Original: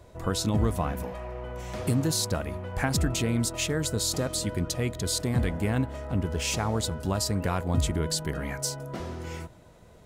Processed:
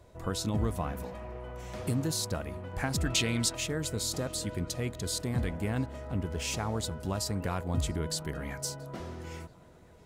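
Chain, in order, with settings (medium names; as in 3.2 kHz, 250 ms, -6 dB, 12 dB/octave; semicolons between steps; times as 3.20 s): 3.05–3.55 s: peaking EQ 3.5 kHz +11 dB 2.5 oct; on a send: tape echo 679 ms, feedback 63%, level -20 dB, low-pass 2.1 kHz; on the sum: trim -5 dB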